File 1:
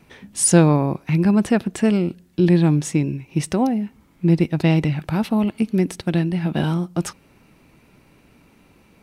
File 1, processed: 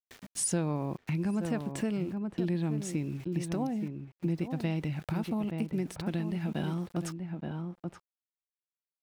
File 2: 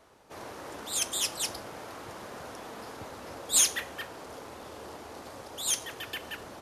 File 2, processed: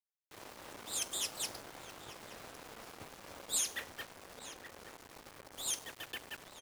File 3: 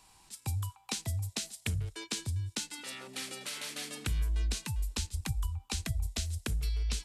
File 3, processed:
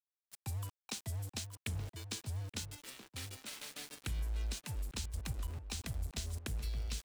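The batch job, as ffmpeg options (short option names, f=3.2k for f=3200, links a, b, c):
-filter_complex "[0:a]aeval=exprs='val(0)*gte(abs(val(0)),0.0106)':c=same,asplit=2[a][b];[b]adelay=874.6,volume=-9dB,highshelf=f=4k:g=-19.7[c];[a][c]amix=inputs=2:normalize=0,acompressor=threshold=-26dB:ratio=2.5,volume=-6dB"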